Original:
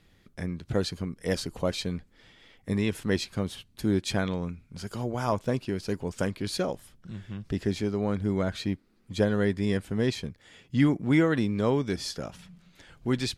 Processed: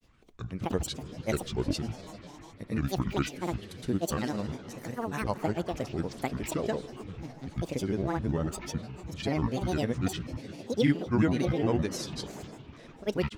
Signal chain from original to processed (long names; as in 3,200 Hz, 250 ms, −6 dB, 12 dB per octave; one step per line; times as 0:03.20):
comb and all-pass reverb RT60 4 s, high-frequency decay 0.75×, pre-delay 120 ms, DRR 11.5 dB
granular cloud, grains 20 per second, pitch spread up and down by 12 semitones
level −1.5 dB